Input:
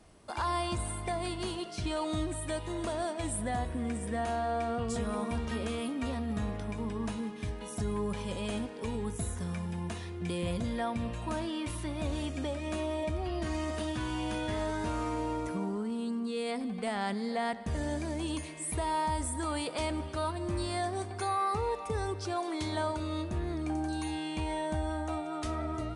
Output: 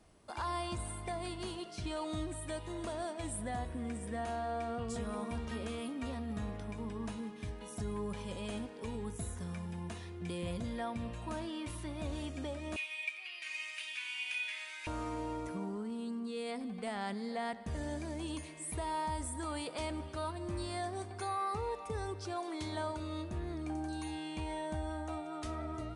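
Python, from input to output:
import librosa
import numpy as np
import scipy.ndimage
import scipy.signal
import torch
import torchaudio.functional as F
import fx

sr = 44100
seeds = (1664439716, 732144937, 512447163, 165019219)

y = fx.highpass_res(x, sr, hz=2400.0, q=8.4, at=(12.76, 14.87))
y = y * 10.0 ** (-5.5 / 20.0)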